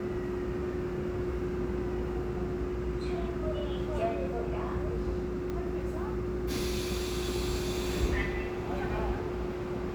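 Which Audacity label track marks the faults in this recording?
5.500000	5.500000	pop -24 dBFS

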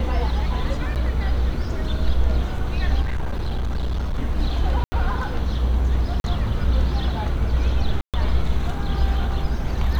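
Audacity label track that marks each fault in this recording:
0.950000	0.960000	dropout 8.6 ms
3.010000	4.200000	clipped -20 dBFS
4.840000	4.920000	dropout 80 ms
6.200000	6.240000	dropout 41 ms
8.010000	8.140000	dropout 127 ms

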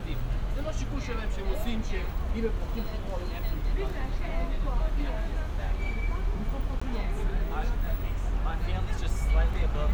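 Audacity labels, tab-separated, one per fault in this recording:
6.800000	6.820000	dropout 15 ms

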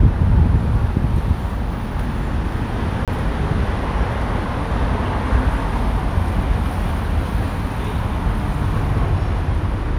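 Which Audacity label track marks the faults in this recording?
3.050000	3.080000	dropout 27 ms

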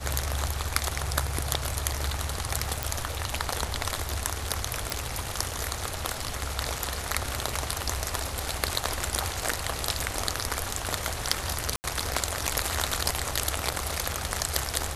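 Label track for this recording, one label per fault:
2.830000	2.830000	pop
4.900000	4.900000	pop
11.760000	11.840000	dropout 79 ms

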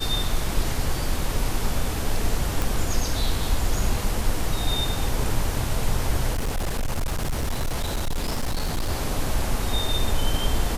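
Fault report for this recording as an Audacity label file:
2.620000	2.620000	pop
6.330000	8.900000	clipped -21 dBFS

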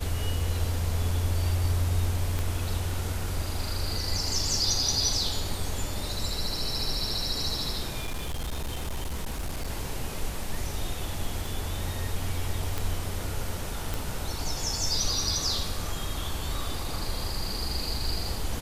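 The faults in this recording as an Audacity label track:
2.390000	2.390000	pop
8.010000	9.700000	clipped -27.5 dBFS
11.460000	11.460000	pop
12.780000	12.780000	pop
13.940000	13.940000	pop

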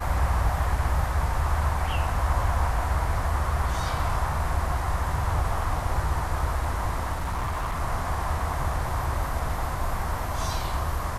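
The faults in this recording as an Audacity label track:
7.160000	7.810000	clipped -24.5 dBFS

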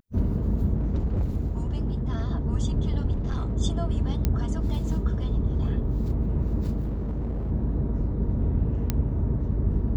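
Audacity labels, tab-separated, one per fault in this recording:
0.760000	2.310000	clipped -21 dBFS
3.110000	3.560000	clipped -23 dBFS
4.250000	4.250000	pop -11 dBFS
6.790000	7.520000	clipped -25.5 dBFS
8.900000	8.900000	pop -10 dBFS

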